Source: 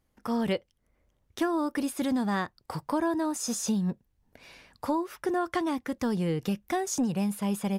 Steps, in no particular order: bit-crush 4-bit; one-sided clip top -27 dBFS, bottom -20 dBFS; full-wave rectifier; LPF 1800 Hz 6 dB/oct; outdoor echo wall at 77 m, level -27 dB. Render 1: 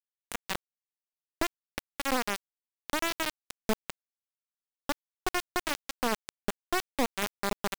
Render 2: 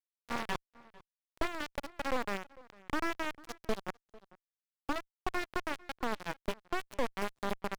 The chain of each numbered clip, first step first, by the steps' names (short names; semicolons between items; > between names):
LPF > one-sided clip > full-wave rectifier > outdoor echo > bit-crush; bit-crush > outdoor echo > one-sided clip > LPF > full-wave rectifier